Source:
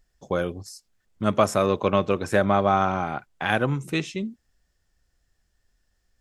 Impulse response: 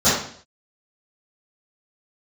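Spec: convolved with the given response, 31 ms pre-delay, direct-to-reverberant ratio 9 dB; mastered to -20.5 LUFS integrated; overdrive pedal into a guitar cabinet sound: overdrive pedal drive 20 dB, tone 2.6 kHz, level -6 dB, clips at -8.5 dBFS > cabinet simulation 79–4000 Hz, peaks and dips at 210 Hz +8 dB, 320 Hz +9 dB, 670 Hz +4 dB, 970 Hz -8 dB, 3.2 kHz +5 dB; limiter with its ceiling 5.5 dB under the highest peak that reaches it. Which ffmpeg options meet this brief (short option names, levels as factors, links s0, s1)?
-filter_complex "[0:a]alimiter=limit=0.299:level=0:latency=1,asplit=2[s0][s1];[1:a]atrim=start_sample=2205,adelay=31[s2];[s1][s2]afir=irnorm=-1:irlink=0,volume=0.0299[s3];[s0][s3]amix=inputs=2:normalize=0,asplit=2[s4][s5];[s5]highpass=f=720:p=1,volume=10,asoftclip=type=tanh:threshold=0.376[s6];[s4][s6]amix=inputs=2:normalize=0,lowpass=f=2600:p=1,volume=0.501,highpass=79,equalizer=f=210:t=q:w=4:g=8,equalizer=f=320:t=q:w=4:g=9,equalizer=f=670:t=q:w=4:g=4,equalizer=f=970:t=q:w=4:g=-8,equalizer=f=3200:t=q:w=4:g=5,lowpass=f=4000:w=0.5412,lowpass=f=4000:w=1.3066,volume=0.708"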